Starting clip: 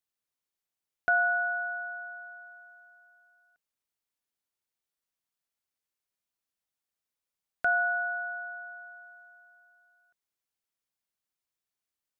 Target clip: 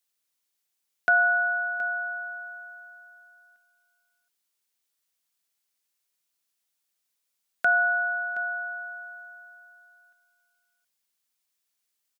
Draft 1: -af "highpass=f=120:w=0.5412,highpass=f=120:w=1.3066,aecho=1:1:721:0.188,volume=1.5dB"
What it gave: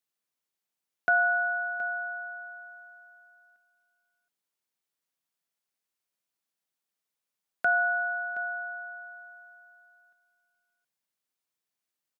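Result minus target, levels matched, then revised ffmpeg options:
4000 Hz band -4.0 dB
-af "highpass=f=120:w=0.5412,highpass=f=120:w=1.3066,highshelf=f=2k:g=9.5,aecho=1:1:721:0.188,volume=1.5dB"

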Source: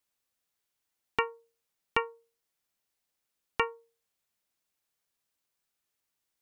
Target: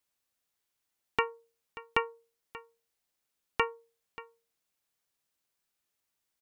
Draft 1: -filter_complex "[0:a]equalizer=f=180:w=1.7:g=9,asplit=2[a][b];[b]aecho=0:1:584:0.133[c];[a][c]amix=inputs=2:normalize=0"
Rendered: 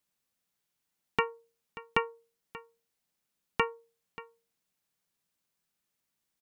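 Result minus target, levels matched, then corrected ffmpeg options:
250 Hz band +4.0 dB
-filter_complex "[0:a]asplit=2[a][b];[b]aecho=0:1:584:0.133[c];[a][c]amix=inputs=2:normalize=0"

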